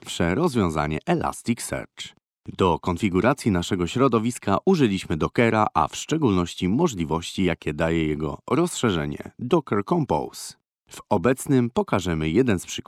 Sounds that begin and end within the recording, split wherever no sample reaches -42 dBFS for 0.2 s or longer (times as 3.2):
2.46–10.52